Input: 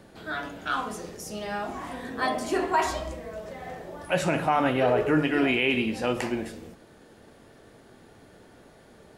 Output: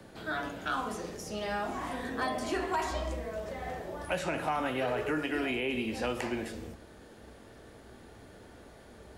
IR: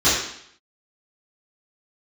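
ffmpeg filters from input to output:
-filter_complex "[0:a]acrossover=split=120|250|1100|5200[link_01][link_02][link_03][link_04][link_05];[link_01]acompressor=threshold=-50dB:ratio=4[link_06];[link_02]acompressor=threshold=-45dB:ratio=4[link_07];[link_03]acompressor=threshold=-33dB:ratio=4[link_08];[link_04]acompressor=threshold=-37dB:ratio=4[link_09];[link_05]acompressor=threshold=-50dB:ratio=4[link_10];[link_06][link_07][link_08][link_09][link_10]amix=inputs=5:normalize=0,asplit=2[link_11][link_12];[link_12]asubboost=boost=11.5:cutoff=99[link_13];[1:a]atrim=start_sample=2205[link_14];[link_13][link_14]afir=irnorm=-1:irlink=0,volume=-37.5dB[link_15];[link_11][link_15]amix=inputs=2:normalize=0,asoftclip=type=hard:threshold=-22.5dB"

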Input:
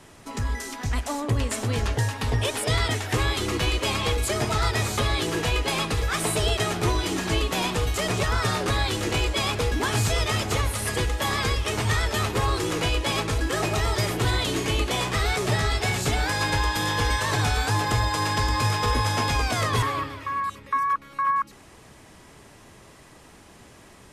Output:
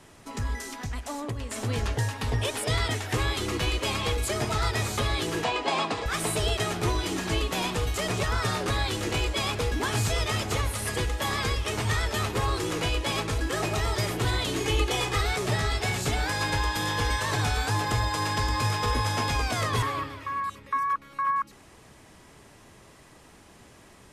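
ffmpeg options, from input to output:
ffmpeg -i in.wav -filter_complex "[0:a]asettb=1/sr,asplit=3[link_01][link_02][link_03];[link_01]atrim=end=0.674[link_04];[link_02]atrim=start=0.67:end=1.56,asetpts=PTS-STARTPTS,afade=type=in:duration=0.004:curve=qsin,afade=type=out:start_time=0.886:duration=0.004:curve=qsin,acompressor=threshold=-27dB:ratio=6[link_05];[link_03]atrim=start=1.556[link_06];[link_04][link_05]acrossfade=duration=0.004:curve1=hsin:curve2=qsin[link_07];[link_07][link_06]acrossfade=duration=0.004:curve1=qsin:curve2=hsin,asettb=1/sr,asplit=3[link_08][link_09][link_10];[link_08]atrim=end=5.444[link_11];[link_09]atrim=start=5.44:end=6.06,asetpts=PTS-STARTPTS,afade=type=in:duration=0.004:curve=qsin,afade=type=out:start_time=0.616:duration=0.004:curve=qsin,highpass=200,equalizer=frequency=270:width_type=q:width=4:gain=5,equalizer=frequency=710:width_type=q:width=4:gain=9,equalizer=frequency=1000:width_type=q:width=4:gain=7,equalizer=frequency=6200:width_type=q:width=4:gain=-5,lowpass=frequency=7500:width=0.5412,lowpass=frequency=7500:width=1.3066[link_12];[link_10]atrim=start=6.056[link_13];[link_11][link_12]acrossfade=duration=0.004:curve1=hsin:curve2=qsin[link_14];[link_14][link_13]acrossfade=duration=0.004:curve1=qsin:curve2=hsin,asettb=1/sr,asplit=3[link_15][link_16][link_17];[link_15]atrim=end=14.604[link_18];[link_16]atrim=start=14.6:end=15.21,asetpts=PTS-STARTPTS,afade=type=in:duration=0.004:curve=qsin,afade=type=out:start_time=0.606:duration=0.004:curve=qsin,aecho=1:1:2.4:0.63,atrim=end_sample=26901[link_19];[link_17]atrim=start=15.206[link_20];[link_18][link_19]acrossfade=duration=0.004:curve1=hsin:curve2=qsin[link_21];[link_21][link_20]acrossfade=duration=0.004:curve1=qsin:curve2=hsin,volume=-3dB" out.wav

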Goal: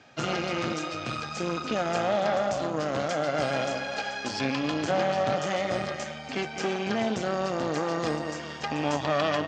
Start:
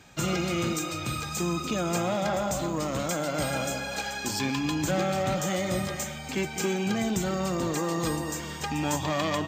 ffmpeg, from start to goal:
ffmpeg -i in.wav -af "aeval=exprs='0.188*(cos(1*acos(clip(val(0)/0.188,-1,1)))-cos(1*PI/2))+0.0841*(cos(2*acos(clip(val(0)/0.188,-1,1)))-cos(2*PI/2))+0.0211*(cos(5*acos(clip(val(0)/0.188,-1,1)))-cos(5*PI/2))+0.0168*(cos(6*acos(clip(val(0)/0.188,-1,1)))-cos(6*PI/2))+0.0106*(cos(7*acos(clip(val(0)/0.188,-1,1)))-cos(7*PI/2))':channel_layout=same,highpass=150,equalizer=frequency=180:width_type=q:width=4:gain=-8,equalizer=frequency=350:width_type=q:width=4:gain=-4,equalizer=frequency=660:width_type=q:width=4:gain=4,equalizer=frequency=960:width_type=q:width=4:gain=-4,equalizer=frequency=2300:width_type=q:width=4:gain=-3,equalizer=frequency=3800:width_type=q:width=4:gain=-5,lowpass=frequency=5100:width=0.5412,lowpass=frequency=5100:width=1.3066" out.wav

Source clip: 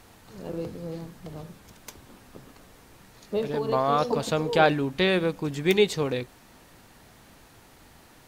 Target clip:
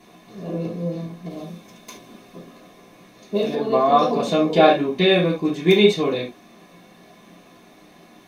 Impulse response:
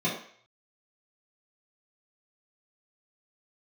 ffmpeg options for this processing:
-filter_complex "[0:a]equalizer=frequency=120:width=1.2:gain=-14[link_01];[1:a]atrim=start_sample=2205,atrim=end_sample=3969[link_02];[link_01][link_02]afir=irnorm=-1:irlink=0,asplit=3[link_03][link_04][link_05];[link_03]afade=type=out:start_time=1.3:duration=0.02[link_06];[link_04]adynamicequalizer=threshold=0.00794:dfrequency=2500:dqfactor=0.7:tfrequency=2500:tqfactor=0.7:attack=5:release=100:ratio=0.375:range=3.5:mode=boostabove:tftype=highshelf,afade=type=in:start_time=1.3:duration=0.02,afade=type=out:start_time=3.54:duration=0.02[link_07];[link_05]afade=type=in:start_time=3.54:duration=0.02[link_08];[link_06][link_07][link_08]amix=inputs=3:normalize=0,volume=-4.5dB"

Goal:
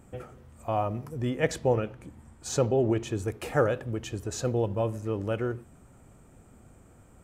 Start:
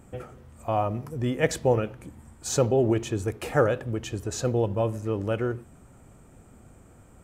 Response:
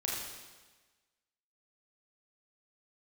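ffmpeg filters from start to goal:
-filter_complex "[0:a]asettb=1/sr,asplit=3[link_01][link_02][link_03];[link_01]atrim=end=1.294[link_04];[link_02]atrim=start=1.29:end=3.08,asetpts=PTS-STARTPTS,afade=type=in:duration=0.004:curve=qsin,afade=type=out:start_time=1.786:duration=0.004:curve=qsin,highshelf=frequency=10000:gain=-8[link_05];[link_03]atrim=start=3.076[link_06];[link_04][link_05]acrossfade=duration=0.004:curve1=hsin:curve2=qsin[link_07];[link_07][link_06]acrossfade=duration=0.004:curve1=qsin:curve2=hsin,volume=-2.5dB"

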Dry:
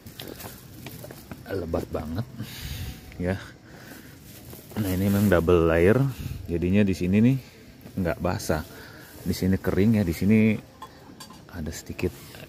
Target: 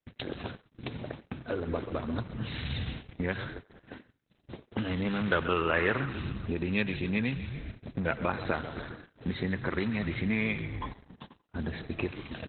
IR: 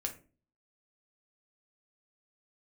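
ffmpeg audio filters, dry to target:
-filter_complex "[0:a]bandreject=frequency=50:width_type=h:width=6,bandreject=frequency=100:width_type=h:width=6,bandreject=frequency=150:width_type=h:width=6,asplit=2[link_01][link_02];[link_02]asplit=6[link_03][link_04][link_05][link_06][link_07][link_08];[link_03]adelay=132,afreqshift=-58,volume=-12.5dB[link_09];[link_04]adelay=264,afreqshift=-116,volume=-17.4dB[link_10];[link_05]adelay=396,afreqshift=-174,volume=-22.3dB[link_11];[link_06]adelay=528,afreqshift=-232,volume=-27.1dB[link_12];[link_07]adelay=660,afreqshift=-290,volume=-32dB[link_13];[link_08]adelay=792,afreqshift=-348,volume=-36.9dB[link_14];[link_09][link_10][link_11][link_12][link_13][link_14]amix=inputs=6:normalize=0[link_15];[link_01][link_15]amix=inputs=2:normalize=0,acrossover=split=8600[link_16][link_17];[link_17]acompressor=threshold=-58dB:ratio=4:attack=1:release=60[link_18];[link_16][link_18]amix=inputs=2:normalize=0,highpass=48,agate=range=-43dB:threshold=-41dB:ratio=16:detection=peak,acrossover=split=990[link_19][link_20];[link_19]acompressor=threshold=-33dB:ratio=5[link_21];[link_21][link_20]amix=inputs=2:normalize=0,asplit=2[link_22][link_23];[link_23]adelay=90,highpass=300,lowpass=3400,asoftclip=type=hard:threshold=-23dB,volume=-17dB[link_24];[link_22][link_24]amix=inputs=2:normalize=0,volume=3.5dB" -ar 48000 -c:a libopus -b:a 8k

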